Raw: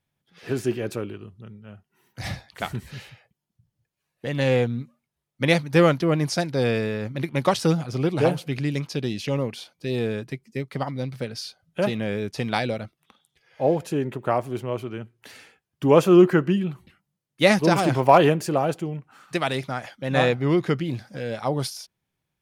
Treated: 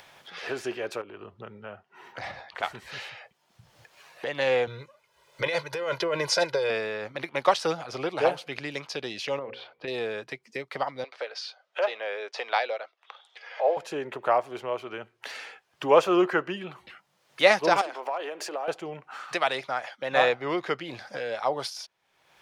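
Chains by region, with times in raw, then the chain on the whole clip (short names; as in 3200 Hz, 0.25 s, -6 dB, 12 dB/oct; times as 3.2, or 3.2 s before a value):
1.01–2.63 LPF 1600 Hz 6 dB/oct + compressor 4:1, threshold -34 dBFS
4.67–6.7 comb 2 ms, depth 96% + negative-ratio compressor -22 dBFS
9.39–9.88 notches 60/120/180/240/300/360/420/480/540 Hz + compressor 2.5:1, threshold -28 dBFS + air absorption 400 m
11.04–13.77 HPF 440 Hz 24 dB/oct + air absorption 93 m
17.81–18.68 compressor, threshold -28 dBFS + HPF 270 Hz 24 dB/oct
whole clip: three-band isolator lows -20 dB, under 480 Hz, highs -12 dB, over 6600 Hz; upward compressor, threshold -30 dBFS; bell 640 Hz +3.5 dB 2.8 oct; gain -1 dB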